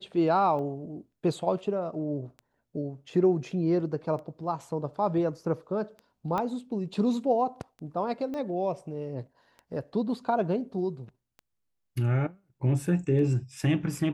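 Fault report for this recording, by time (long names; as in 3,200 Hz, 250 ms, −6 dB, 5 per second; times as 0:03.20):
scratch tick 33 1/3 rpm −31 dBFS
0:06.38: click −18 dBFS
0:08.34: click −25 dBFS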